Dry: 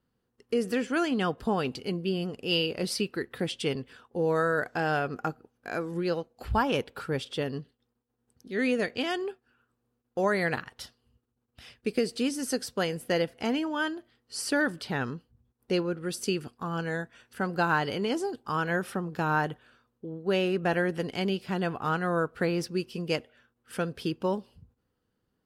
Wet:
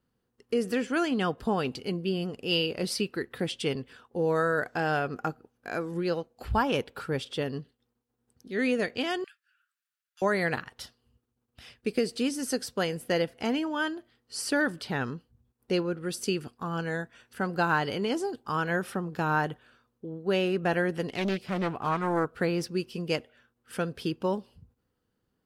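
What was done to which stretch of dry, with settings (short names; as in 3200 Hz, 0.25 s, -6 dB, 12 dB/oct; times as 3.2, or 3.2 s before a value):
9.24–10.22 steep high-pass 1400 Hz 48 dB/oct
21.08–22.25 Doppler distortion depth 0.44 ms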